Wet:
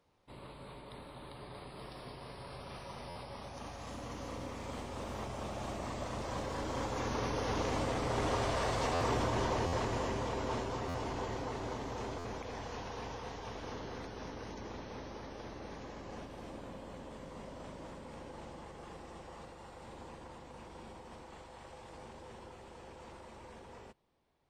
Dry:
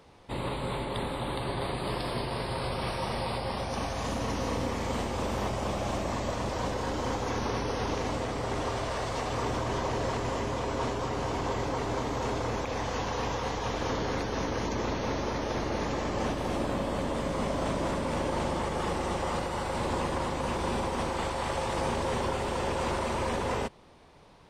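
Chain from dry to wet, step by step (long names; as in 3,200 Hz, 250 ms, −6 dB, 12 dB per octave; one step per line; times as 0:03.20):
source passing by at 0:08.68, 15 m/s, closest 20 metres
buffer that repeats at 0:03.09/0:08.94/0:09.66/0:10.88/0:12.18, samples 512, times 5
level −1 dB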